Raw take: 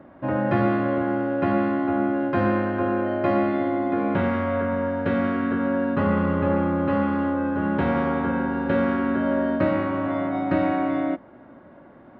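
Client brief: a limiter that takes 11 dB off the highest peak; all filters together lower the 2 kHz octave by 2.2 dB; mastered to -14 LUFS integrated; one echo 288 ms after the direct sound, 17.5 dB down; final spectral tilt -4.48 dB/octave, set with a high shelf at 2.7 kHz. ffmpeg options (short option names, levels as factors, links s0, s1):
-af "equalizer=f=2000:t=o:g=-6,highshelf=f=2700:g=7.5,alimiter=limit=0.0891:level=0:latency=1,aecho=1:1:288:0.133,volume=5.62"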